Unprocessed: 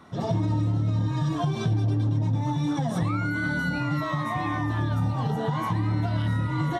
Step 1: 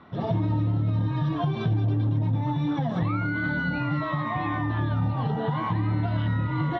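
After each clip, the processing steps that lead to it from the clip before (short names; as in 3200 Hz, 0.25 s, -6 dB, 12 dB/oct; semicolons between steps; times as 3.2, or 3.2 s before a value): LPF 3700 Hz 24 dB/oct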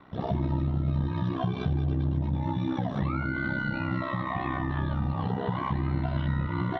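ring modulator 32 Hz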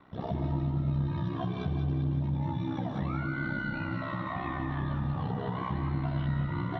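split-band echo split 750 Hz, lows 0.12 s, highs 0.18 s, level -8 dB; gain -4.5 dB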